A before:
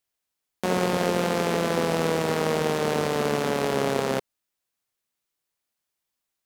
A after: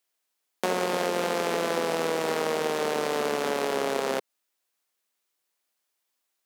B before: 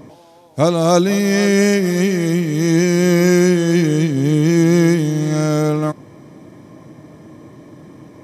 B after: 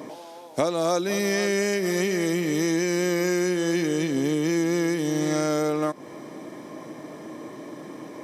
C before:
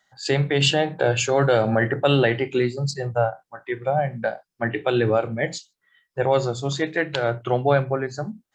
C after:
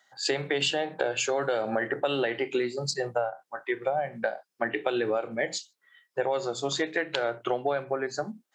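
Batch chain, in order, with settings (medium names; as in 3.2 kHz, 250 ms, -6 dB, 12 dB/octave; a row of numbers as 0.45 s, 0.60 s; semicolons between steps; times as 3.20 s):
high-pass 300 Hz 12 dB/octave; compression 6:1, threshold -26 dBFS; peak normalisation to -9 dBFS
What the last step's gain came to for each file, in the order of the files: +3.5 dB, +4.5 dB, +2.0 dB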